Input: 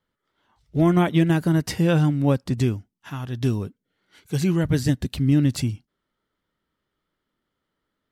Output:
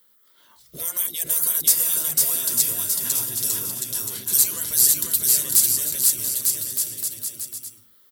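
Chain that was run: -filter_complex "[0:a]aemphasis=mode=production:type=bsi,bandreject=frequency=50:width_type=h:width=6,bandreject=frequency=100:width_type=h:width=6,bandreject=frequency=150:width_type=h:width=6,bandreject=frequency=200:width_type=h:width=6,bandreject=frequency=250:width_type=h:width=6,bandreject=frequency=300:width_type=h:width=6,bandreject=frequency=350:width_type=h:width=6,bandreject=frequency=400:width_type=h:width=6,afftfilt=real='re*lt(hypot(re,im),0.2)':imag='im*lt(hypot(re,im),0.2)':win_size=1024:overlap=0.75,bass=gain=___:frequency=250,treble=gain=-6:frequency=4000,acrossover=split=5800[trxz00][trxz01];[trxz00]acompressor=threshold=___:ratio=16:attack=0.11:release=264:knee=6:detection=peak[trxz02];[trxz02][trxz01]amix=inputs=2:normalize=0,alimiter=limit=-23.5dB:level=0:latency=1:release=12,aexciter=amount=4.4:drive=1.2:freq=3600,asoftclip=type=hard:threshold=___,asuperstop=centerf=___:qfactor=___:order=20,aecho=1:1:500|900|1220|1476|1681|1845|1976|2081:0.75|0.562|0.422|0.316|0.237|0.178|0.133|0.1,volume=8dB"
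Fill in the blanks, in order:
0, -42dB, -16dB, 800, 6.7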